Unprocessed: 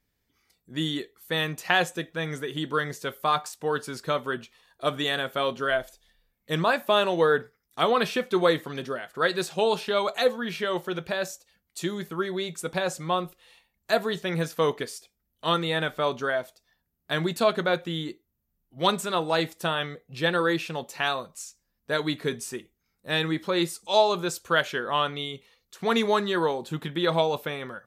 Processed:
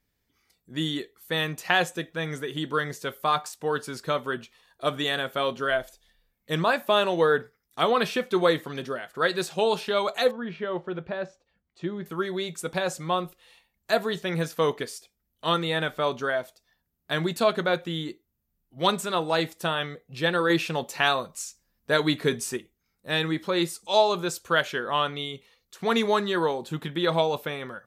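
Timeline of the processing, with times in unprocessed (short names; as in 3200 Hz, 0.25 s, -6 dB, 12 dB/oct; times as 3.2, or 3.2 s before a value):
10.31–12.06 tape spacing loss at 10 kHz 35 dB
20.5–22.57 gain +4 dB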